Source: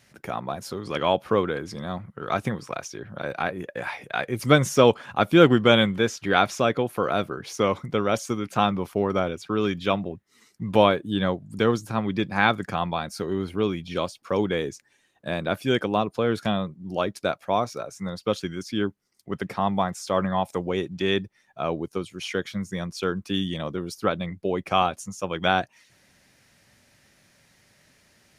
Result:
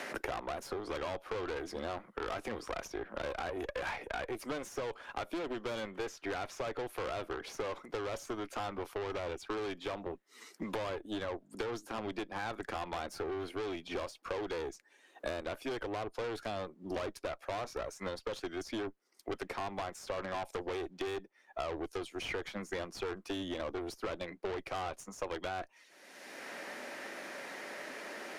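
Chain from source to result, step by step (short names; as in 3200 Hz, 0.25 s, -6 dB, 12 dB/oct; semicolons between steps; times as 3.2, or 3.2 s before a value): vocal rider within 4 dB 0.5 s; limiter -14 dBFS, peak gain reduction 9 dB; HPF 310 Hz 24 dB/oct; high shelf 2600 Hz -7.5 dB; tube stage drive 31 dB, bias 0.7; three-band squash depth 100%; gain -2.5 dB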